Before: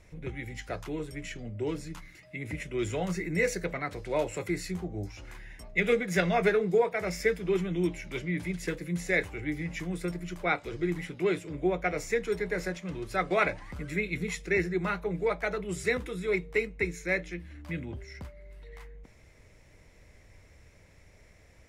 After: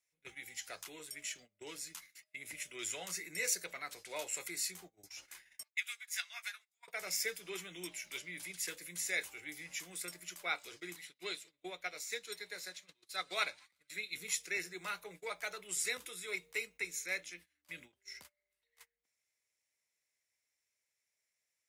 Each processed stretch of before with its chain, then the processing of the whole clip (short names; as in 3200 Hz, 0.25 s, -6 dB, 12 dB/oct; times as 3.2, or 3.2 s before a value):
5.63–6.88 Bessel high-pass 1500 Hz, order 8 + upward expander, over -51 dBFS
10.96–14.15 bell 4000 Hz +10.5 dB 0.31 oct + narrowing echo 0.111 s, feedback 82%, band-pass 2600 Hz, level -22.5 dB + upward expander, over -38 dBFS
whole clip: differentiator; gate -60 dBFS, range -22 dB; dynamic EQ 1900 Hz, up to -5 dB, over -55 dBFS, Q 3; gain +6.5 dB